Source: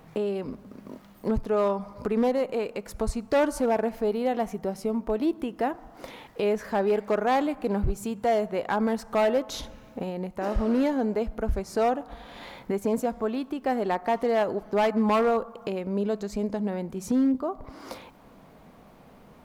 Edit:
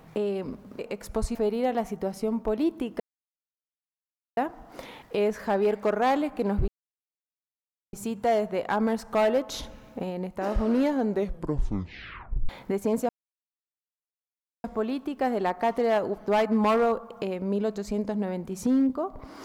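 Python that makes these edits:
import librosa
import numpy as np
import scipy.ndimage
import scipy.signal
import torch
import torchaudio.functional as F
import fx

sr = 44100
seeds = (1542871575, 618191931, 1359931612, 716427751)

y = fx.edit(x, sr, fx.cut(start_s=0.79, length_s=1.85),
    fx.cut(start_s=3.2, length_s=0.77),
    fx.insert_silence(at_s=5.62, length_s=1.37),
    fx.insert_silence(at_s=7.93, length_s=1.25),
    fx.tape_stop(start_s=11.06, length_s=1.43),
    fx.insert_silence(at_s=13.09, length_s=1.55), tone=tone)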